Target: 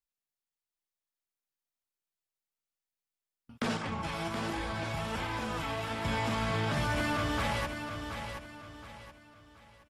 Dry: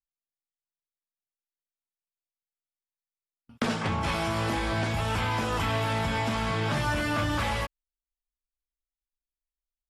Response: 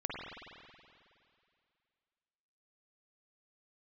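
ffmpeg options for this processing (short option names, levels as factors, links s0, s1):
-filter_complex "[0:a]alimiter=limit=0.0631:level=0:latency=1,asettb=1/sr,asplit=3[s0][s1][s2];[s0]atrim=end=3.774[s3];[s1]atrim=start=3.77:end=6.05,asetpts=PTS-STARTPTS,afade=t=in:d=0.004:c=qsin,afade=t=out:st=2.276:d=0.004:c=qsin,flanger=delay=2.4:depth=4.9:regen=47:speed=1.3:shape=triangular[s4];[s2]atrim=start=6.046[s5];[s3][s4]acrossfade=d=0.004:c1=hsin:c2=qsin[s6];[s6][s5]acrossfade=d=0.004:c1=qsin:c2=hsin,aecho=1:1:724|1448|2172|2896:0.422|0.148|0.0517|0.0181"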